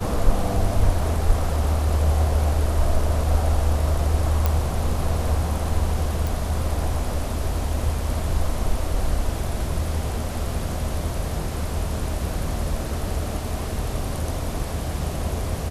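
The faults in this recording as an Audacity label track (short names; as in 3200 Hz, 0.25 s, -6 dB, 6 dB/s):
4.460000	4.460000	pop
6.270000	6.270000	pop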